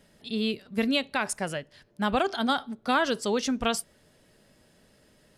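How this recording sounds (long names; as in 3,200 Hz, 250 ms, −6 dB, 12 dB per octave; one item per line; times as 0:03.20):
background noise floor −62 dBFS
spectral slope −3.5 dB per octave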